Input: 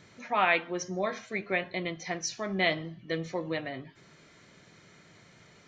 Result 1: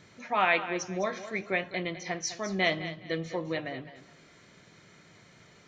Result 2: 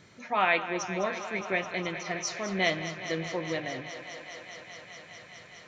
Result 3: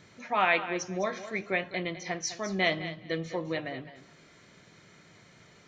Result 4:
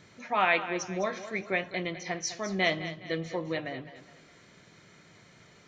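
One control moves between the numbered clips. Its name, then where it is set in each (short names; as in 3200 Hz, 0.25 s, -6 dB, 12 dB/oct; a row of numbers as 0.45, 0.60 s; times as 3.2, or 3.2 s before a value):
thinning echo, feedback: 25, 90, 16, 39%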